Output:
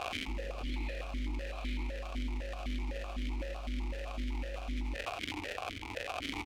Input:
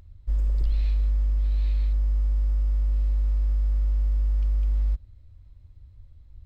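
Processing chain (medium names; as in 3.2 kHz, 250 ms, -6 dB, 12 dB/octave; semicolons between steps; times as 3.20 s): crackle 150 per s -31 dBFS; in parallel at 0 dB: compressor with a negative ratio -32 dBFS, ratio -1; on the sum: bit crusher 8-bit; on a send: delay 85 ms -8.5 dB; on the sum: stepped vowel filter 7.9 Hz; trim +15 dB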